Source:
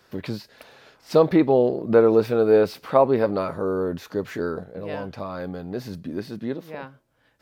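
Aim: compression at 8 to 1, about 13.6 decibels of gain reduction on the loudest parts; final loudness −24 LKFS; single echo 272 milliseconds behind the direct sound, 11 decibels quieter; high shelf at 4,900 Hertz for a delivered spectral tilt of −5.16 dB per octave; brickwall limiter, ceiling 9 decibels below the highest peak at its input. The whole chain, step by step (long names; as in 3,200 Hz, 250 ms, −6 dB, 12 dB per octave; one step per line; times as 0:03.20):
high-shelf EQ 4,900 Hz +8.5 dB
downward compressor 8 to 1, threshold −26 dBFS
brickwall limiter −23 dBFS
single-tap delay 272 ms −11 dB
level +10 dB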